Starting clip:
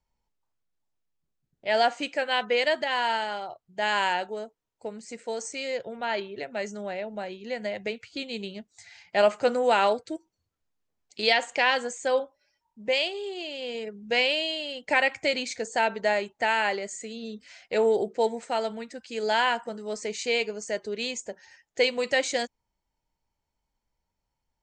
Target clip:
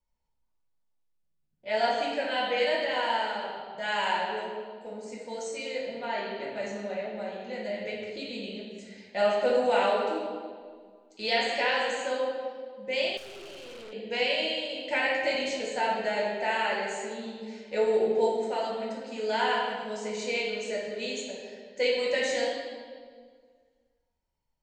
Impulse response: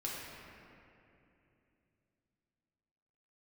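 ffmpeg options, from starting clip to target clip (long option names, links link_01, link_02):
-filter_complex "[1:a]atrim=start_sample=2205,asetrate=79380,aresample=44100[link_01];[0:a][link_01]afir=irnorm=-1:irlink=0,asettb=1/sr,asplit=3[link_02][link_03][link_04];[link_02]atrim=end=13.174[link_05];[link_03]atrim=start=13.17:end=13.93,asetpts=PTS-STARTPTS,afade=type=in:duration=0.004:curve=qsin,afade=type=out:start_time=0.756:duration=0.004:curve=qsin,aeval=exprs='(tanh(126*val(0)+0.4)-tanh(0.4))/126':channel_layout=same[link_06];[link_04]atrim=start=13.926[link_07];[link_05][link_06]acrossfade=duration=0.004:curve1=hsin:curve2=qsin[link_08];[link_08][link_07]acrossfade=duration=0.004:curve1=qsin:curve2=hsin"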